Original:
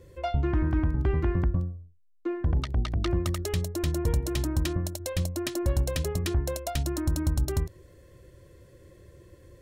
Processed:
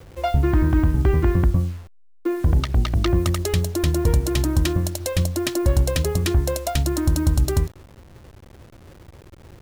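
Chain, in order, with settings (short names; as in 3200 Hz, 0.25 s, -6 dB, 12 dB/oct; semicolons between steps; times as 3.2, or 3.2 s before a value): level-crossing sampler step -47.5 dBFS; gain +7.5 dB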